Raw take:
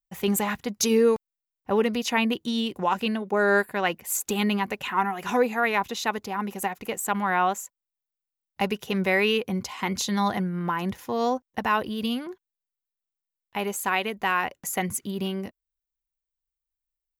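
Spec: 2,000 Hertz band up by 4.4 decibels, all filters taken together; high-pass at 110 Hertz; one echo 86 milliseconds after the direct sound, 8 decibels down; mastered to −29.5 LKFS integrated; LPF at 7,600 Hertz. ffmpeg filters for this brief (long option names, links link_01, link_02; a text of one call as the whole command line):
ffmpeg -i in.wav -af "highpass=110,lowpass=7600,equalizer=frequency=2000:width_type=o:gain=5.5,aecho=1:1:86:0.398,volume=-5.5dB" out.wav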